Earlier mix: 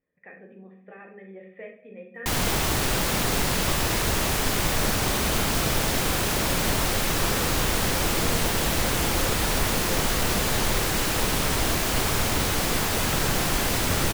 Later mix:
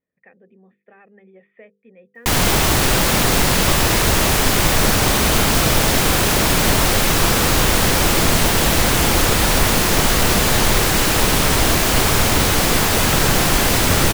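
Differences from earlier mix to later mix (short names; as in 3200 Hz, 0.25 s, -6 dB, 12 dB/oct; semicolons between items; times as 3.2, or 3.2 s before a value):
background +8.5 dB; reverb: off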